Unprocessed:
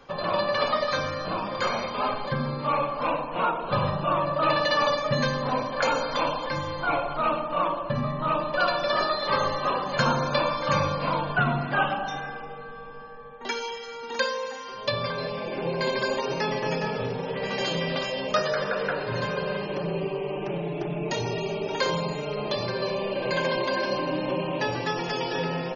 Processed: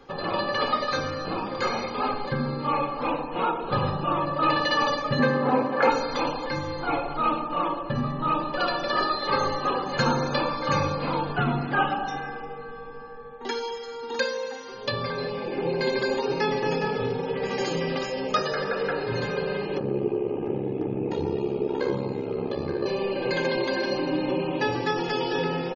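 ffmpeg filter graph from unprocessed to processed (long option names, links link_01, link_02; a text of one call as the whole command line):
ffmpeg -i in.wav -filter_complex "[0:a]asettb=1/sr,asplit=3[link_01][link_02][link_03];[link_01]atrim=end=5.194[link_04];[link_02]atrim=start=5.19:end=5.9,asetpts=PTS-STARTPTS,afade=type=in:duration=0.004:curve=qsin,afade=type=out:start_time=0.706:duration=0.004:curve=qsin,acontrast=26,highpass=160,lowpass=2100[link_05];[link_03]atrim=start=5.896[link_06];[link_04][link_05]acrossfade=duration=0.004:curve1=hsin:curve2=qsin[link_07];[link_07][link_06]acrossfade=duration=0.004:curve1=qsin:curve2=hsin,asettb=1/sr,asplit=3[link_08][link_09][link_10];[link_08]atrim=end=19.794[link_11];[link_09]atrim=start=19.79:end=22.86,asetpts=PTS-STARTPTS,afade=type=in:duration=0.004:curve=qsin,afade=type=out:start_time=3.066:duration=0.004:curve=qsin,lowpass=frequency=1300:poles=1,equalizer=frequency=270:width=1.2:gain=6,aeval=exprs='val(0)*sin(2*PI*34*n/s)':channel_layout=same[link_12];[link_10]atrim=start=22.856[link_13];[link_11][link_12]acrossfade=duration=0.004:curve1=hsin:curve2=qsin[link_14];[link_14][link_13]acrossfade=duration=0.004:curve1=qsin:curve2=hsin,equalizer=frequency=230:width_type=o:width=0.95:gain=10.5,aecho=1:1:2.4:0.58,volume=-2dB" out.wav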